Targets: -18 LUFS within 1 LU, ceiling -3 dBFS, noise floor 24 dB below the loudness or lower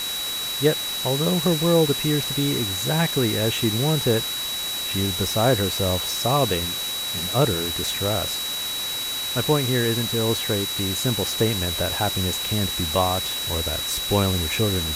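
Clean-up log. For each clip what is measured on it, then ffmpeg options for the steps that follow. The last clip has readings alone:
steady tone 3900 Hz; tone level -27 dBFS; noise floor -28 dBFS; noise floor target -46 dBFS; loudness -22.0 LUFS; peak -6.0 dBFS; loudness target -18.0 LUFS
-> -af "bandreject=f=3.9k:w=30"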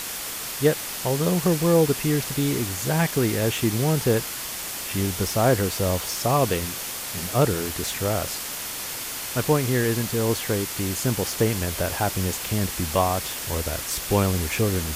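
steady tone none; noise floor -32 dBFS; noise floor target -48 dBFS
-> -af "afftdn=nr=16:nf=-32"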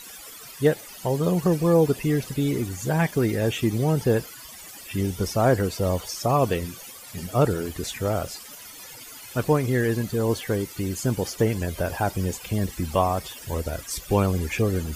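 noise floor -43 dBFS; noise floor target -49 dBFS
-> -af "afftdn=nr=6:nf=-43"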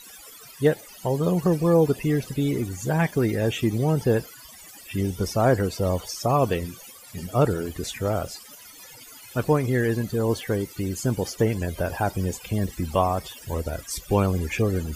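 noise floor -46 dBFS; noise floor target -49 dBFS
-> -af "afftdn=nr=6:nf=-46"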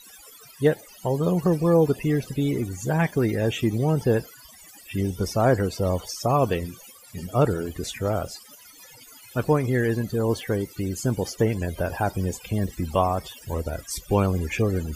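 noise floor -49 dBFS; loudness -25.0 LUFS; peak -7.5 dBFS; loudness target -18.0 LUFS
-> -af "volume=7dB,alimiter=limit=-3dB:level=0:latency=1"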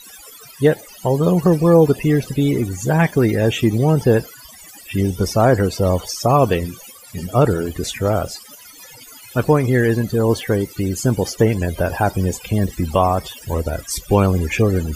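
loudness -18.0 LUFS; peak -3.0 dBFS; noise floor -42 dBFS

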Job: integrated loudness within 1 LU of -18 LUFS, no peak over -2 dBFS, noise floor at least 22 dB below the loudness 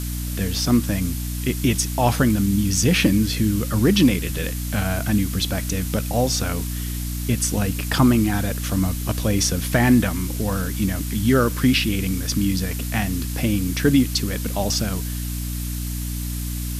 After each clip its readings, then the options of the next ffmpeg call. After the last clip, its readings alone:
hum 60 Hz; harmonics up to 300 Hz; hum level -25 dBFS; noise floor -27 dBFS; noise floor target -44 dBFS; loudness -21.5 LUFS; peak -5.0 dBFS; loudness target -18.0 LUFS
-> -af "bandreject=f=60:t=h:w=4,bandreject=f=120:t=h:w=4,bandreject=f=180:t=h:w=4,bandreject=f=240:t=h:w=4,bandreject=f=300:t=h:w=4"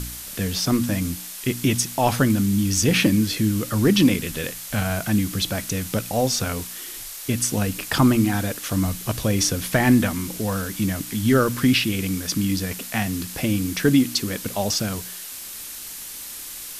hum none; noise floor -36 dBFS; noise floor target -44 dBFS
-> -af "afftdn=nr=8:nf=-36"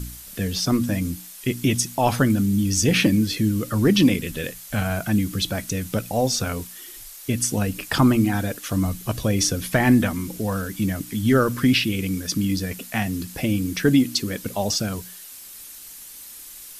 noise floor -41 dBFS; noise floor target -45 dBFS
-> -af "afftdn=nr=6:nf=-41"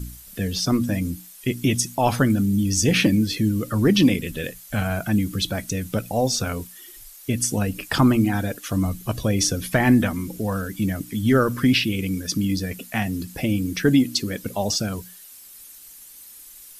noise floor -45 dBFS; loudness -22.5 LUFS; peak -5.0 dBFS; loudness target -18.0 LUFS
-> -af "volume=4.5dB,alimiter=limit=-2dB:level=0:latency=1"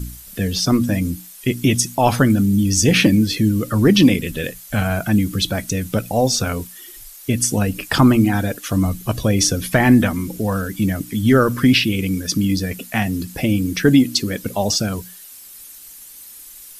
loudness -18.0 LUFS; peak -2.0 dBFS; noise floor -40 dBFS

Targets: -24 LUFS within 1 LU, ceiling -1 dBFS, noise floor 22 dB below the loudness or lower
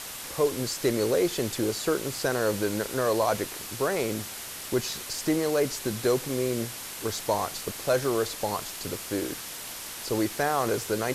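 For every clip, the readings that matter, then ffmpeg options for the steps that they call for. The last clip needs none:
noise floor -39 dBFS; noise floor target -51 dBFS; loudness -28.5 LUFS; peak -13.0 dBFS; loudness target -24.0 LUFS
-> -af "afftdn=nr=12:nf=-39"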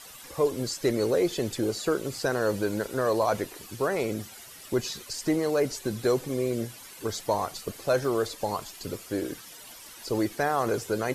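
noise floor -47 dBFS; noise floor target -51 dBFS
-> -af "afftdn=nr=6:nf=-47"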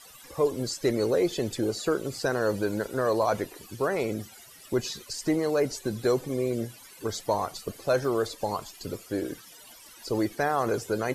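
noise floor -50 dBFS; noise floor target -51 dBFS
-> -af "afftdn=nr=6:nf=-50"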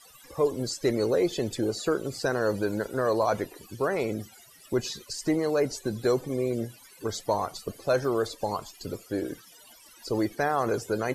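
noise floor -53 dBFS; loudness -29.0 LUFS; peak -13.0 dBFS; loudness target -24.0 LUFS
-> -af "volume=5dB"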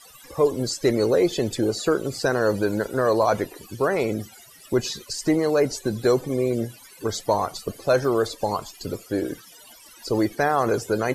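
loudness -24.0 LUFS; peak -8.0 dBFS; noise floor -48 dBFS

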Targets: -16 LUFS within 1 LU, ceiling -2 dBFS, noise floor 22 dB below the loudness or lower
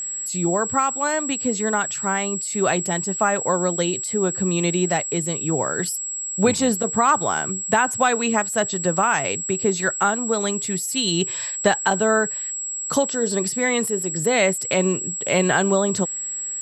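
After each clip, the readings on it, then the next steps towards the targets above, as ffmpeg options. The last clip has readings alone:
steady tone 7700 Hz; tone level -26 dBFS; loudness -21.0 LUFS; peak -4.5 dBFS; loudness target -16.0 LUFS
-> -af "bandreject=f=7.7k:w=30"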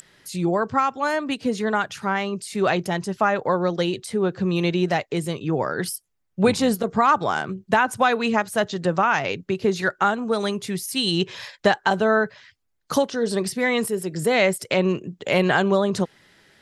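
steady tone none; loudness -22.5 LUFS; peak -4.5 dBFS; loudness target -16.0 LUFS
-> -af "volume=6.5dB,alimiter=limit=-2dB:level=0:latency=1"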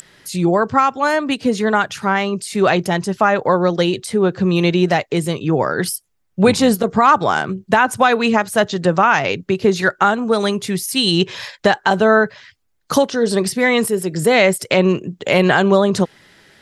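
loudness -16.5 LUFS; peak -2.0 dBFS; noise floor -63 dBFS

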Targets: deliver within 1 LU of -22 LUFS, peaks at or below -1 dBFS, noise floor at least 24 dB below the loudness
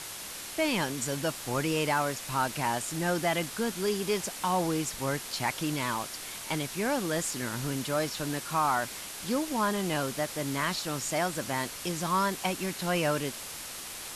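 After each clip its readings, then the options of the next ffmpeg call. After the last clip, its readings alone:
noise floor -41 dBFS; noise floor target -55 dBFS; loudness -30.5 LUFS; peak -16.0 dBFS; loudness target -22.0 LUFS
-> -af "afftdn=nr=14:nf=-41"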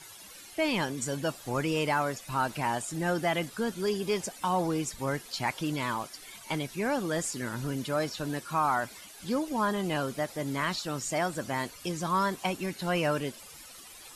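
noise floor -49 dBFS; noise floor target -55 dBFS
-> -af "afftdn=nr=6:nf=-49"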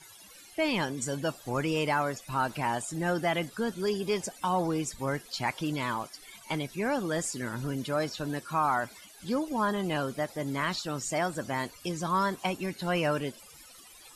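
noise floor -52 dBFS; noise floor target -55 dBFS
-> -af "afftdn=nr=6:nf=-52"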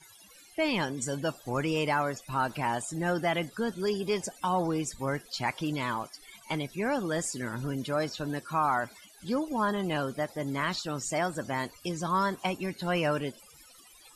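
noise floor -55 dBFS; loudness -31.0 LUFS; peak -16.5 dBFS; loudness target -22.0 LUFS
-> -af "volume=9dB"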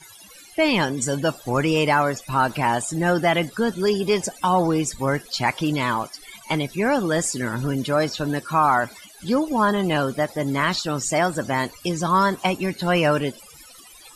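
loudness -22.0 LUFS; peak -7.5 dBFS; noise floor -46 dBFS

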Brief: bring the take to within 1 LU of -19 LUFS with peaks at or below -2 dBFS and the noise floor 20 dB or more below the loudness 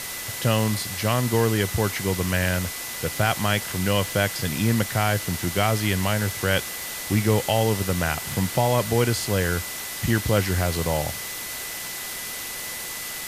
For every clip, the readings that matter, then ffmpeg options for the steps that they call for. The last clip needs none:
steady tone 2000 Hz; tone level -39 dBFS; noise floor -33 dBFS; noise floor target -44 dBFS; loudness -24.0 LUFS; peak -6.0 dBFS; loudness target -19.0 LUFS
-> -af "bandreject=f=2k:w=30"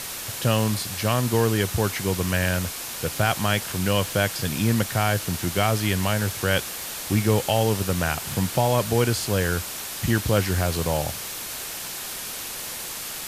steady tone none; noise floor -34 dBFS; noise floor target -44 dBFS
-> -af "afftdn=nr=10:nf=-34"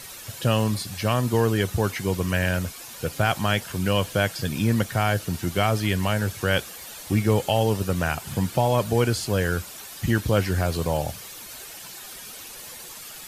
noise floor -41 dBFS; noise floor target -45 dBFS
-> -af "afftdn=nr=6:nf=-41"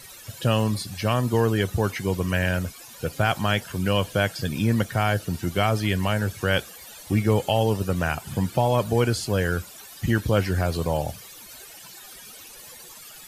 noise floor -44 dBFS; noise floor target -45 dBFS
-> -af "afftdn=nr=6:nf=-44"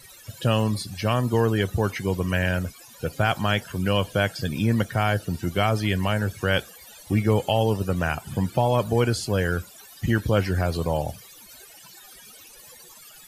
noise floor -48 dBFS; loudness -24.5 LUFS; peak -6.5 dBFS; loudness target -19.0 LUFS
-> -af "volume=5.5dB,alimiter=limit=-2dB:level=0:latency=1"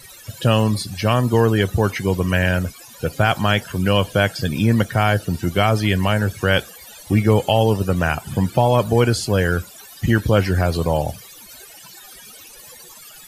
loudness -19.0 LUFS; peak -2.0 dBFS; noise floor -42 dBFS

